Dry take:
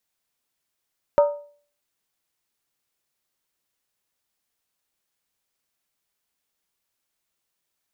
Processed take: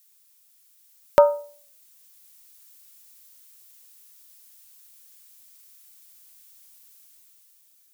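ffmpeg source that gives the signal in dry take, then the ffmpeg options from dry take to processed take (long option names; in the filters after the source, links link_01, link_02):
-f lavfi -i "aevalsrc='0.316*pow(10,-3*t/0.46)*sin(2*PI*582*t)+0.119*pow(10,-3*t/0.364)*sin(2*PI*927.7*t)+0.0447*pow(10,-3*t/0.315)*sin(2*PI*1243.2*t)+0.0168*pow(10,-3*t/0.304)*sin(2*PI*1336.3*t)+0.00631*pow(10,-3*t/0.282)*sin(2*PI*1544*t)':duration=0.63:sample_rate=44100"
-af "crystalizer=i=6.5:c=0,dynaudnorm=framelen=160:gausssize=11:maxgain=7dB,bandreject=frequency=820:width=20"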